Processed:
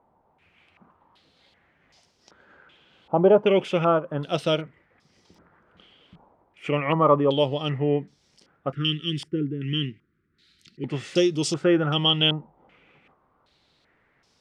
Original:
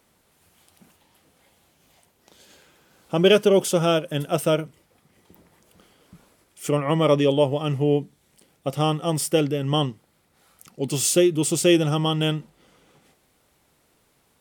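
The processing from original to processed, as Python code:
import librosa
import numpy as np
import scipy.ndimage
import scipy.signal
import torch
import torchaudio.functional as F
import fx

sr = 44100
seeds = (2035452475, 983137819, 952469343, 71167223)

y = fx.cheby1_bandstop(x, sr, low_hz=370.0, high_hz=1600.0, order=3, at=(8.72, 10.84))
y = fx.filter_held_lowpass(y, sr, hz=2.6, low_hz=870.0, high_hz=5300.0)
y = y * 10.0 ** (-3.0 / 20.0)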